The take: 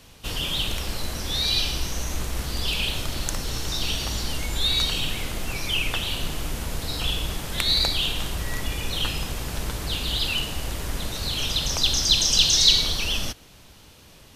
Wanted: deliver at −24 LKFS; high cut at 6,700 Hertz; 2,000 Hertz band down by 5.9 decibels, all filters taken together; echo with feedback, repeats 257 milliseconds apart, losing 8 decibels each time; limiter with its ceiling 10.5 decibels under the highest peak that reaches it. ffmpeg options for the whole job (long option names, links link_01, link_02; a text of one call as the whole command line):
ffmpeg -i in.wav -af "lowpass=6700,equalizer=frequency=2000:width_type=o:gain=-8.5,alimiter=limit=-16dB:level=0:latency=1,aecho=1:1:257|514|771|1028|1285:0.398|0.159|0.0637|0.0255|0.0102,volume=3.5dB" out.wav